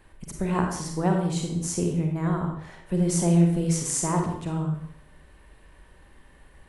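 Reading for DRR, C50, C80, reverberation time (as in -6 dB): 1.5 dB, 3.0 dB, 6.5 dB, 0.70 s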